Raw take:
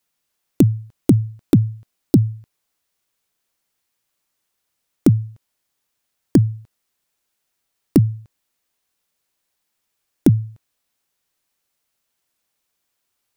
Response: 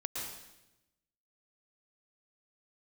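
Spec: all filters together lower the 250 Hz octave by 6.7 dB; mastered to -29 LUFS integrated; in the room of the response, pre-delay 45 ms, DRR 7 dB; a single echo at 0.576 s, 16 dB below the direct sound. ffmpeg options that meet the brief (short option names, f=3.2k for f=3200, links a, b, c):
-filter_complex "[0:a]equalizer=f=250:t=o:g=-9,aecho=1:1:576:0.158,asplit=2[a][b];[1:a]atrim=start_sample=2205,adelay=45[c];[b][c]afir=irnorm=-1:irlink=0,volume=-9dB[d];[a][d]amix=inputs=2:normalize=0,volume=-6dB"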